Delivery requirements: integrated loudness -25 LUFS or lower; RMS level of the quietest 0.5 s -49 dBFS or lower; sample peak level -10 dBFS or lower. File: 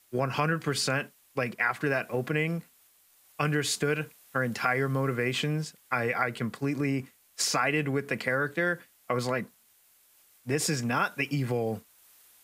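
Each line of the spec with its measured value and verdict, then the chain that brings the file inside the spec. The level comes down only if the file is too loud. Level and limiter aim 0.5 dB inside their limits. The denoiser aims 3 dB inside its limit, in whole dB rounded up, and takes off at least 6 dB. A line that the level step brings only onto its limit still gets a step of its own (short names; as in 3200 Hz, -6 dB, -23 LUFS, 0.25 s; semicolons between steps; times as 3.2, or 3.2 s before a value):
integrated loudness -29.5 LUFS: OK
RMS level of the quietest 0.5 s -63 dBFS: OK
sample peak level -9.0 dBFS: fail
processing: limiter -10.5 dBFS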